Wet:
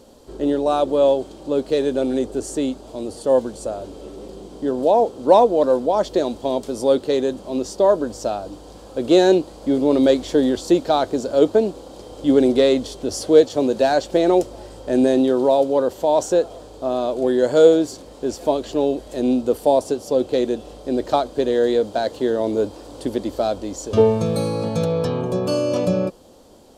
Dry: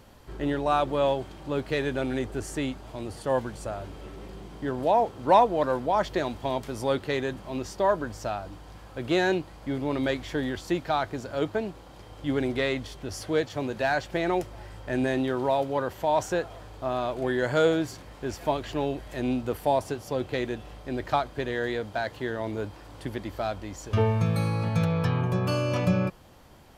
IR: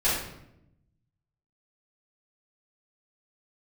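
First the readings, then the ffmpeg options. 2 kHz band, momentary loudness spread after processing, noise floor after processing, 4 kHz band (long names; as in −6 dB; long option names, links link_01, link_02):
−2.5 dB, 13 LU, −41 dBFS, +6.0 dB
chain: -af "equalizer=frequency=125:width_type=o:width=1:gain=-6,equalizer=frequency=250:width_type=o:width=1:gain=8,equalizer=frequency=500:width_type=o:width=1:gain=11,equalizer=frequency=2000:width_type=o:width=1:gain=-8,equalizer=frequency=4000:width_type=o:width=1:gain=6,equalizer=frequency=8000:width_type=o:width=1:gain=9,dynaudnorm=framelen=560:gausssize=11:maxgain=11.5dB,volume=-1dB"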